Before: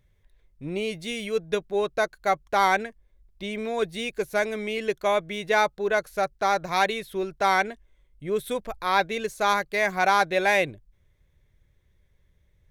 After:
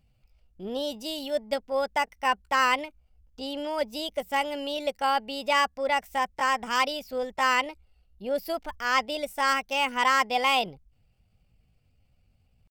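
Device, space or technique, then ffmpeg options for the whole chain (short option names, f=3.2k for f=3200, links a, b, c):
chipmunk voice: -af "asetrate=58866,aresample=44100,atempo=0.749154,volume=-2dB"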